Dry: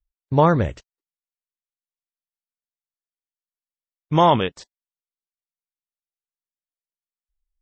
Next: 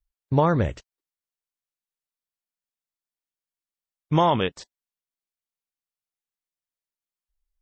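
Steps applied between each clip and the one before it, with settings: compressor, threshold -15 dBFS, peak gain reduction 5.5 dB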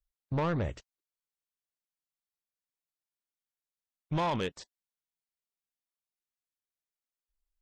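soft clip -20 dBFS, distortion -10 dB; gain -5.5 dB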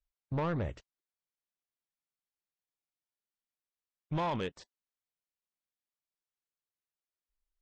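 LPF 4000 Hz 6 dB/oct; gain -2.5 dB

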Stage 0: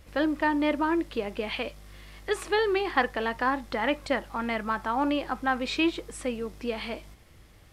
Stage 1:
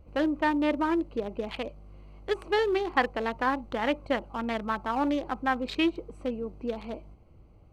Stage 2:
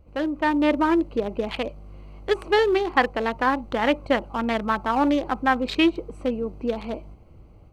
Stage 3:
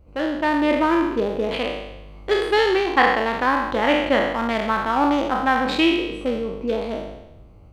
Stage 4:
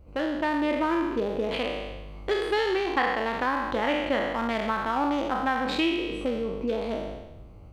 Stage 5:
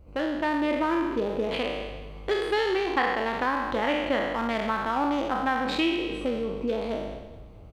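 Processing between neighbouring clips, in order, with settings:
Wiener smoothing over 25 samples
AGC gain up to 6.5 dB
spectral trails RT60 0.95 s
compressor 2:1, threshold -28 dBFS, peak gain reduction 9.5 dB
feedback echo 0.213 s, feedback 52%, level -19 dB

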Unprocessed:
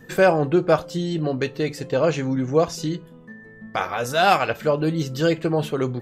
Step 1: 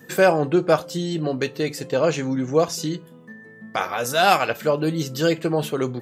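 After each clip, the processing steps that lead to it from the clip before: HPF 130 Hz; high shelf 6400 Hz +9 dB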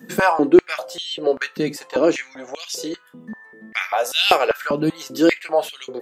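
stepped high-pass 5.1 Hz 210–3000 Hz; gain -1 dB

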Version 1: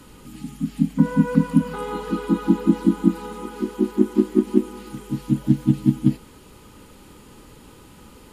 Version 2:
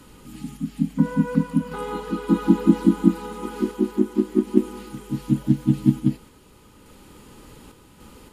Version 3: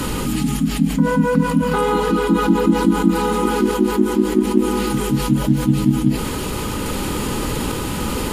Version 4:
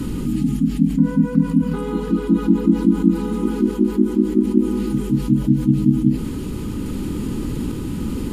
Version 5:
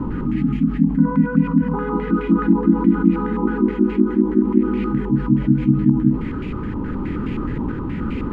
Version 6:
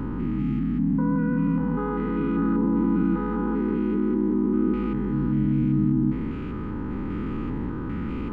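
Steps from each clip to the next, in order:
random-step tremolo; gain +2 dB
fast leveller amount 70%; gain -1 dB
resonant low shelf 420 Hz +11.5 dB, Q 1.5; gain -13 dB
stepped low-pass 9.5 Hz 970–2300 Hz
stepped spectrum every 0.2 s; gain -3.5 dB

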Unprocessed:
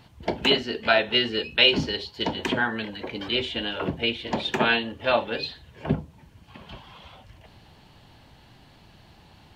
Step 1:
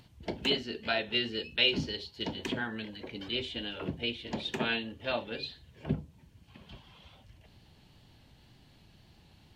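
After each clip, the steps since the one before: bell 1000 Hz -7.5 dB 2.1 oct; upward compressor, threshold -49 dBFS; wow and flutter 28 cents; gain -6 dB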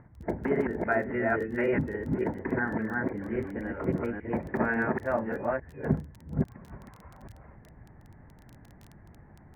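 reverse delay 0.28 s, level -1 dB; steep low-pass 2000 Hz 72 dB/oct; crackle 16/s -43 dBFS; gain +5 dB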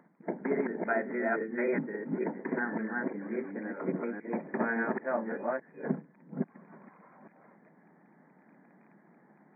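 brick-wall FIR band-pass 160–2500 Hz; gain -3 dB

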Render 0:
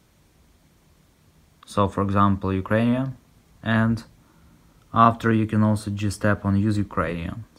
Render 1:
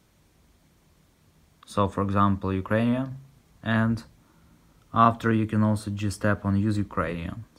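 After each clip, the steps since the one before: de-hum 67.88 Hz, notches 2; gain -3 dB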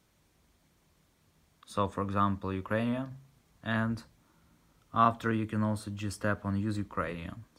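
low shelf 430 Hz -3.5 dB; gain -5 dB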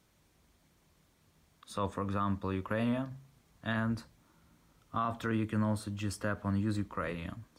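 limiter -22 dBFS, peak gain reduction 11 dB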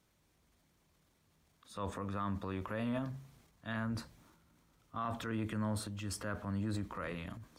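transient shaper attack -3 dB, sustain +8 dB; gain -5 dB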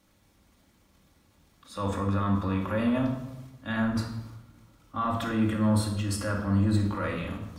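reverb RT60 1.0 s, pre-delay 4 ms, DRR -1 dB; gain +5.5 dB

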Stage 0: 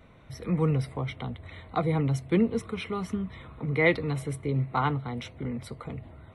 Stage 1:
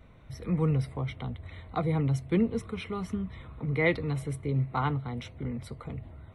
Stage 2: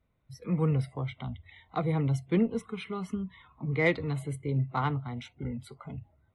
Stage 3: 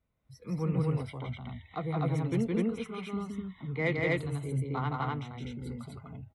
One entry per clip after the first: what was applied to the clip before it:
low shelf 99 Hz +9.5 dB; gain -3.5 dB
spectral noise reduction 19 dB; added harmonics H 6 -42 dB, 7 -35 dB, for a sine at -12 dBFS
loudspeakers at several distances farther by 57 m -2 dB, 86 m 0 dB; gain -5.5 dB

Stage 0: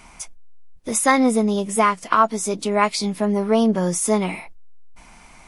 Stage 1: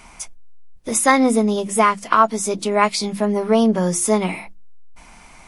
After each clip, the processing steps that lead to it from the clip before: notches 50/100/150/200/250/300/350 Hz; gain +2 dB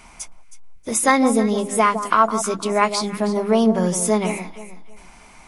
echo with dull and thin repeats by turns 0.159 s, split 1200 Hz, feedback 52%, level -9 dB; gain -1.5 dB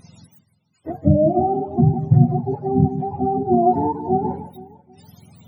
spectrum mirrored in octaves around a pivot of 400 Hz; gain +1.5 dB

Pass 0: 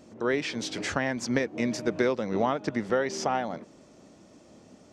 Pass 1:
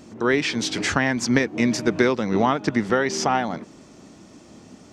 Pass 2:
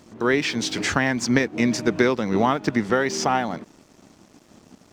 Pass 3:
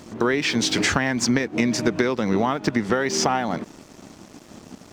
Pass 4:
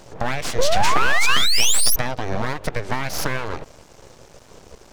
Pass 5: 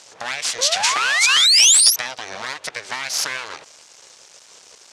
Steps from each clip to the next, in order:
bell 560 Hz -7 dB 0.63 oct; gain +8.5 dB
crossover distortion -49.5 dBFS
compressor, threshold -25 dBFS, peak gain reduction 11.5 dB; gain +7.5 dB
painted sound rise, 0.58–1.96, 240–6200 Hz -12 dBFS; full-wave rectifier; gain -1 dB
weighting filter ITU-R 468; gain -3.5 dB

